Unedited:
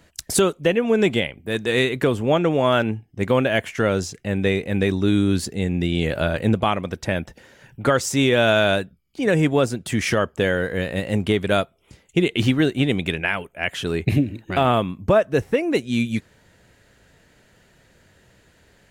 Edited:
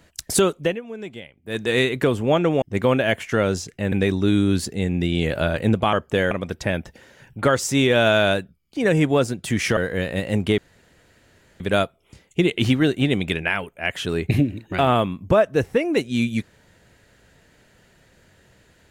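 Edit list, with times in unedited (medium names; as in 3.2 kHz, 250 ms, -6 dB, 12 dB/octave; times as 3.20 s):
0.61–1.61 s: dip -16 dB, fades 0.20 s
2.62–3.08 s: delete
4.38–4.72 s: delete
10.19–10.57 s: move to 6.73 s
11.38 s: insert room tone 1.02 s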